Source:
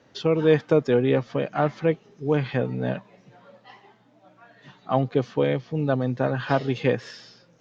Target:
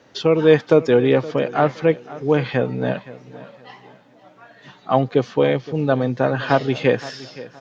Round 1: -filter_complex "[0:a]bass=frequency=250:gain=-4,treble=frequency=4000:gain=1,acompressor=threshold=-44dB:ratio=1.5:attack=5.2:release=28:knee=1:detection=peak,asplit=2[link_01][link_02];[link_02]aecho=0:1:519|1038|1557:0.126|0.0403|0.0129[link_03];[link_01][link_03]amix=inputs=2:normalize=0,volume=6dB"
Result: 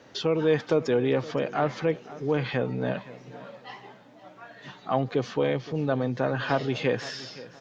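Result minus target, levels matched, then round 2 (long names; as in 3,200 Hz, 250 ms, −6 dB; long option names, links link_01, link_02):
downward compressor: peak gain reduction +10.5 dB
-filter_complex "[0:a]bass=frequency=250:gain=-4,treble=frequency=4000:gain=1,asplit=2[link_01][link_02];[link_02]aecho=0:1:519|1038|1557:0.126|0.0403|0.0129[link_03];[link_01][link_03]amix=inputs=2:normalize=0,volume=6dB"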